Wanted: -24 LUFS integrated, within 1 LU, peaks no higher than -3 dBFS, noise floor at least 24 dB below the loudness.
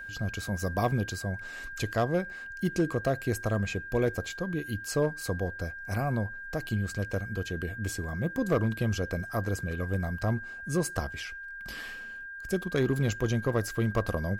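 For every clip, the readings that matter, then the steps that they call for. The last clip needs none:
clipped 0.3%; flat tops at -18.5 dBFS; steady tone 1600 Hz; tone level -39 dBFS; loudness -31.5 LUFS; peak -18.5 dBFS; loudness target -24.0 LUFS
-> clip repair -18.5 dBFS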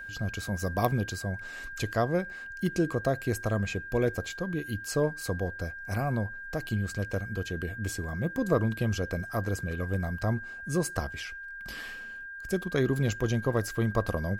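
clipped 0.0%; steady tone 1600 Hz; tone level -39 dBFS
-> notch 1600 Hz, Q 30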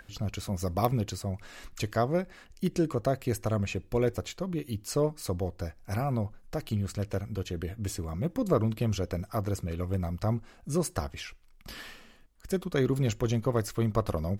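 steady tone none; loudness -31.5 LUFS; peak -9.5 dBFS; loudness target -24.0 LUFS
-> gain +7.5 dB; limiter -3 dBFS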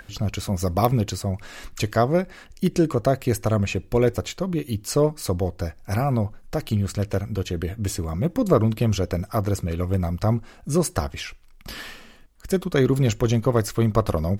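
loudness -24.0 LUFS; peak -3.0 dBFS; noise floor -49 dBFS

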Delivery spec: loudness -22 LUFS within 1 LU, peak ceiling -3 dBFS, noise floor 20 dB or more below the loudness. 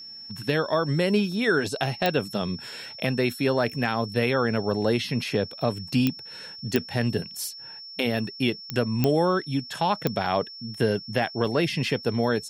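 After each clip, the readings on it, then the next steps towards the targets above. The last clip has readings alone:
clicks 6; steady tone 5400 Hz; tone level -39 dBFS; loudness -26.0 LUFS; peak -6.5 dBFS; loudness target -22.0 LUFS
-> de-click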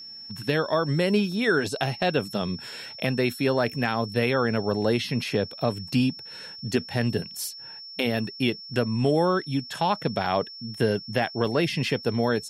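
clicks 0; steady tone 5400 Hz; tone level -39 dBFS
-> notch 5400 Hz, Q 30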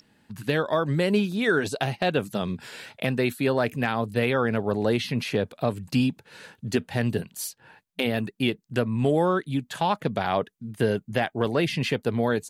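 steady tone none; loudness -26.0 LUFS; peak -10.5 dBFS; loudness target -22.0 LUFS
-> gain +4 dB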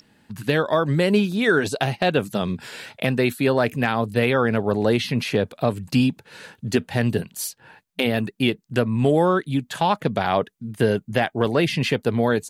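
loudness -22.0 LUFS; peak -6.5 dBFS; noise floor -64 dBFS

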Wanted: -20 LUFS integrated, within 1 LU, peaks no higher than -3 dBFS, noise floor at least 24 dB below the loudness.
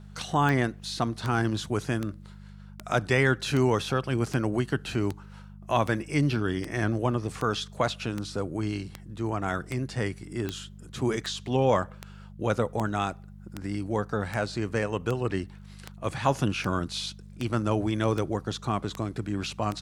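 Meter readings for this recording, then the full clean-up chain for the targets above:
clicks 26; hum 50 Hz; harmonics up to 200 Hz; hum level -43 dBFS; loudness -29.0 LUFS; peak -9.0 dBFS; loudness target -20.0 LUFS
-> de-click; de-hum 50 Hz, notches 4; gain +9 dB; limiter -3 dBFS

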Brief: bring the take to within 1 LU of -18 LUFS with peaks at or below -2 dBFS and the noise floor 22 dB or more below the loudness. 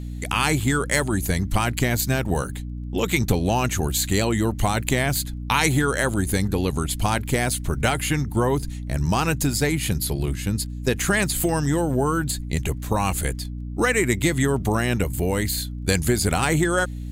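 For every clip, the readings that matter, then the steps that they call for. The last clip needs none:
ticks 16/s; hum 60 Hz; harmonics up to 300 Hz; hum level -29 dBFS; loudness -23.0 LUFS; peak -3.5 dBFS; loudness target -18.0 LUFS
-> de-click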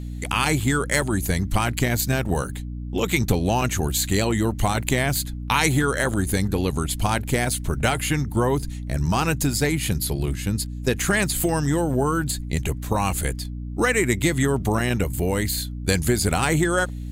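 ticks 0.76/s; hum 60 Hz; harmonics up to 300 Hz; hum level -29 dBFS
-> de-hum 60 Hz, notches 5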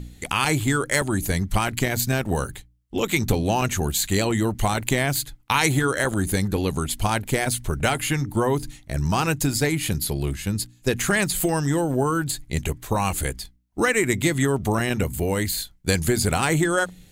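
hum none; loudness -23.5 LUFS; peak -4.0 dBFS; loudness target -18.0 LUFS
-> gain +5.5 dB; limiter -2 dBFS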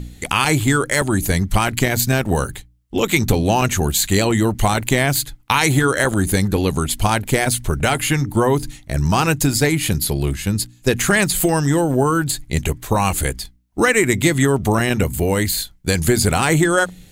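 loudness -18.0 LUFS; peak -2.0 dBFS; noise floor -48 dBFS

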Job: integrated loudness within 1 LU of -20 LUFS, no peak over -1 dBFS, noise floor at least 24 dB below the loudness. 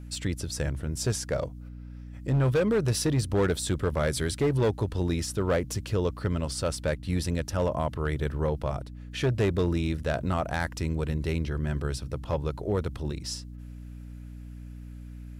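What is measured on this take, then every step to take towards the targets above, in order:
clipped 1.1%; flat tops at -19.0 dBFS; hum 60 Hz; harmonics up to 300 Hz; hum level -39 dBFS; loudness -29.0 LUFS; peak -19.0 dBFS; loudness target -20.0 LUFS
-> clip repair -19 dBFS; notches 60/120/180/240/300 Hz; gain +9 dB

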